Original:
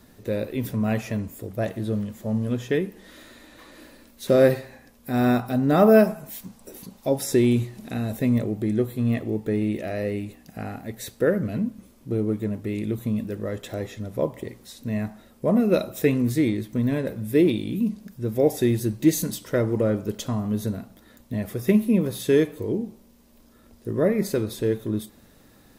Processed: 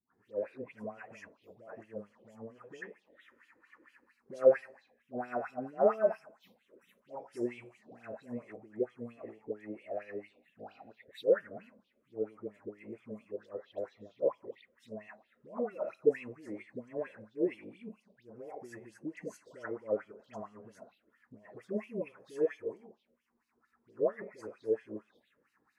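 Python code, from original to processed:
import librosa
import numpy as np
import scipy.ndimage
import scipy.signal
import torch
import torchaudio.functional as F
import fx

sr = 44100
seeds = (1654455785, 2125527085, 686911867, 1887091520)

y = fx.dispersion(x, sr, late='highs', ms=147.0, hz=1100.0)
y = fx.env_phaser(y, sr, low_hz=510.0, high_hz=3700.0, full_db=-25.5)
y = fx.filter_lfo_bandpass(y, sr, shape='sine', hz=4.4, low_hz=470.0, high_hz=3400.0, q=4.2)
y = y * librosa.db_to_amplitude(-1.0)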